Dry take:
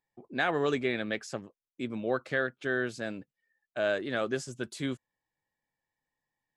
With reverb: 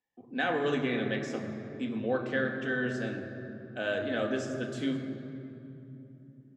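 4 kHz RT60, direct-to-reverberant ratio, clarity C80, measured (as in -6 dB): 1.8 s, 1.0 dB, 7.0 dB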